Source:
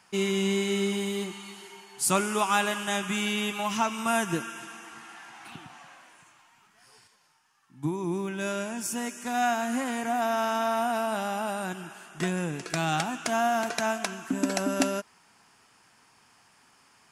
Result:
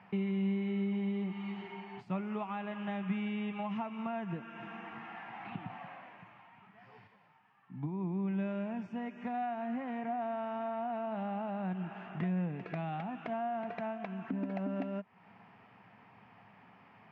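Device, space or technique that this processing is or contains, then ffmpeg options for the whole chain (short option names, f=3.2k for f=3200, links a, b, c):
bass amplifier: -af "acompressor=threshold=-43dB:ratio=4,highpass=83,equalizer=f=110:t=q:w=4:g=7,equalizer=f=190:t=q:w=4:g=9,equalizer=f=340:t=q:w=4:g=-5,equalizer=f=710:t=q:w=4:g=3,equalizer=f=1.1k:t=q:w=4:g=-3,equalizer=f=1.5k:t=q:w=4:g=-8,lowpass=f=2.3k:w=0.5412,lowpass=f=2.3k:w=1.3066,volume=4.5dB"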